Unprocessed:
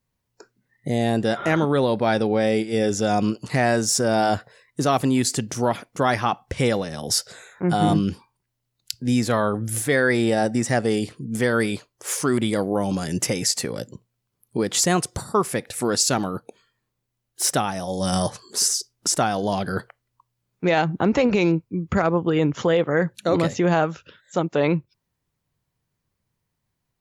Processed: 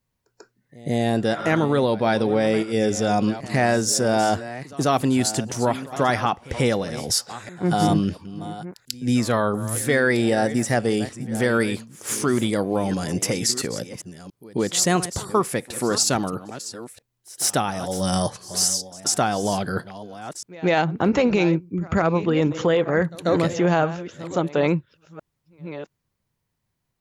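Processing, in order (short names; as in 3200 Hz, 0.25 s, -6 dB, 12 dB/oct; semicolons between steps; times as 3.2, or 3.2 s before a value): reverse delay 0.681 s, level -14 dB; pre-echo 0.141 s -21 dB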